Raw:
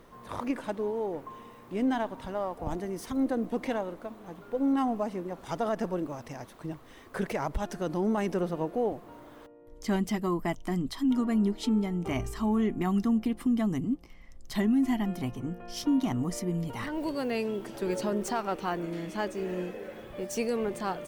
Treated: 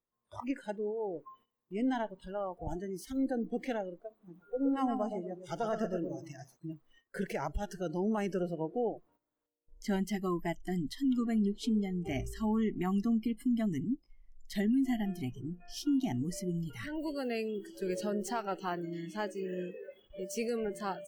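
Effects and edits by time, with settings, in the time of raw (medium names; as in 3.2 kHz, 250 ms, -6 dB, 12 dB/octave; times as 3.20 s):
4.09–6.57 s: feedback delay 119 ms, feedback 41%, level -6 dB
whole clip: spectral noise reduction 22 dB; gate -59 dBFS, range -14 dB; trim -4 dB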